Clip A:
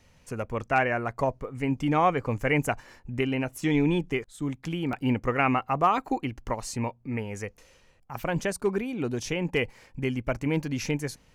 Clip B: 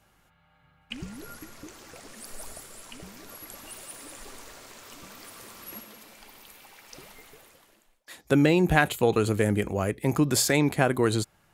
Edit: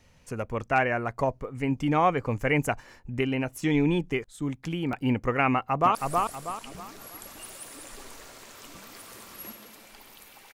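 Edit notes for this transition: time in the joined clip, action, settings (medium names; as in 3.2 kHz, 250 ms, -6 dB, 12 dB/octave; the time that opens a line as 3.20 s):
clip A
5.53–5.95 s: echo throw 320 ms, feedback 35%, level -3.5 dB
5.95 s: go over to clip B from 2.23 s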